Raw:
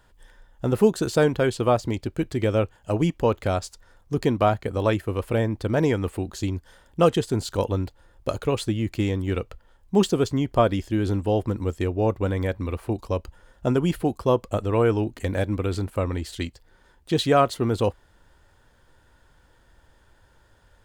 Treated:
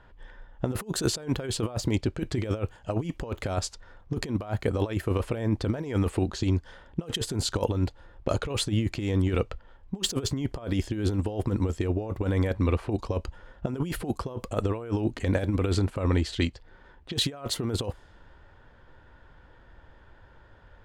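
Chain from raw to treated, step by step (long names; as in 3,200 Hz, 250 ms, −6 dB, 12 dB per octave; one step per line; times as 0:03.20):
low-pass that shuts in the quiet parts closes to 2,600 Hz, open at −19.5 dBFS
compressor whose output falls as the input rises −26 dBFS, ratio −0.5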